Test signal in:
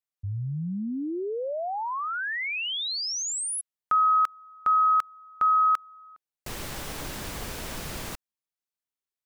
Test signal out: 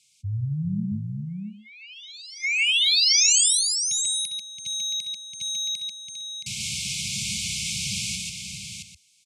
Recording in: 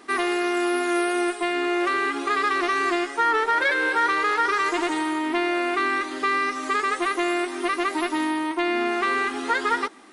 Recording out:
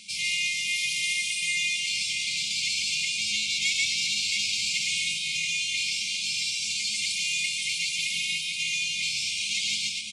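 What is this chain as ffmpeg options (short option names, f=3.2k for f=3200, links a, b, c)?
-filter_complex "[0:a]acrossover=split=240[a][b];[a]acontrast=84[c];[b]asoftclip=type=tanh:threshold=-28dB[d];[c][d]amix=inputs=2:normalize=0,highpass=f=85:w=0.5412,highpass=f=85:w=1.3066,tiltshelf=f=820:g=-6,aecho=1:1:66|138|142|401|672|794:0.211|0.596|0.596|0.335|0.531|0.133,areverse,acompressor=mode=upward:threshold=-44dB:ratio=2.5:attack=1.5:release=21:knee=2.83:detection=peak,areverse,afftfilt=real='re*(1-between(b*sr/4096,220,2100))':imag='im*(1-between(b*sr/4096,220,2100))':win_size=4096:overlap=0.75,lowpass=f=8.3k:w=0.5412,lowpass=f=8.3k:w=1.3066,highshelf=f=5k:g=6,volume=2.5dB"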